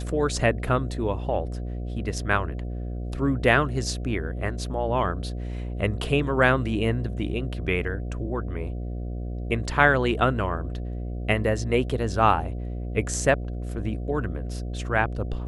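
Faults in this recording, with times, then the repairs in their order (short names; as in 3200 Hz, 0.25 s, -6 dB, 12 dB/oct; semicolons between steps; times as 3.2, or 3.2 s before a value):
buzz 60 Hz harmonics 12 -31 dBFS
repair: de-hum 60 Hz, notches 12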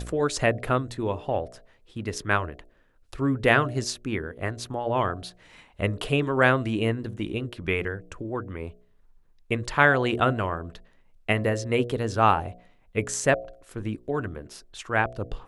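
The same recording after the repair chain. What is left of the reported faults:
none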